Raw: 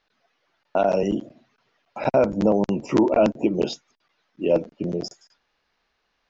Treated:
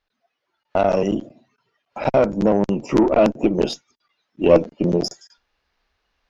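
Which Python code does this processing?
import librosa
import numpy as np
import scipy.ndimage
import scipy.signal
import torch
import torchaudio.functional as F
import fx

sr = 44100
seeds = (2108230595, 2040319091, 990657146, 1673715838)

y = fx.cheby_harmonics(x, sr, harmonics=(4, 8), levels_db=(-23, -36), full_scale_db=-7.0)
y = fx.noise_reduce_blind(y, sr, reduce_db=10)
y = fx.rider(y, sr, range_db=10, speed_s=2.0)
y = F.gain(torch.from_numpy(y), 3.5).numpy()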